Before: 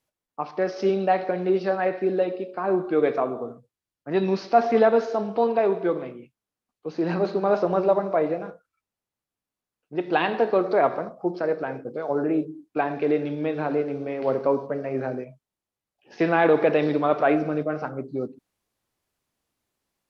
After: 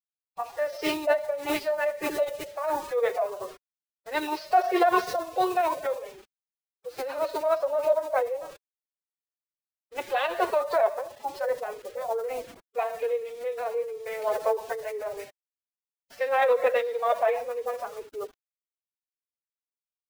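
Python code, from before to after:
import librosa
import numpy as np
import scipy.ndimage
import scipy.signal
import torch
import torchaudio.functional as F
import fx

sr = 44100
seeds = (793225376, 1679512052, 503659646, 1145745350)

y = fx.spec_quant(x, sr, step_db=15)
y = scipy.signal.sosfilt(scipy.signal.butter(4, 410.0, 'highpass', fs=sr, output='sos'), y)
y = fx.dynamic_eq(y, sr, hz=1500.0, q=4.2, threshold_db=-47.0, ratio=4.0, max_db=-5)
y = fx.quant_dither(y, sr, seeds[0], bits=8, dither='none')
y = fx.pitch_keep_formants(y, sr, semitones=8.0)
y = y * 10.0 ** (-1.0 / 20.0)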